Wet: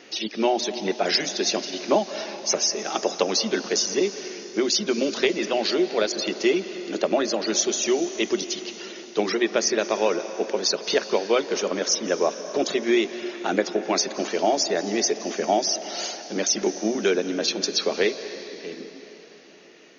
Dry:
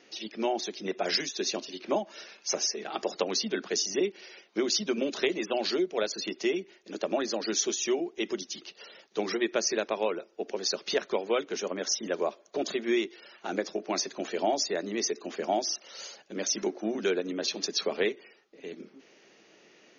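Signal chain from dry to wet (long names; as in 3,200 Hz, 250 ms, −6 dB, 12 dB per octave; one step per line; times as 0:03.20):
in parallel at +1 dB: speech leveller 0.5 s
on the sum: convolution reverb RT60 3.9 s, pre-delay 160 ms, DRR 10.5 dB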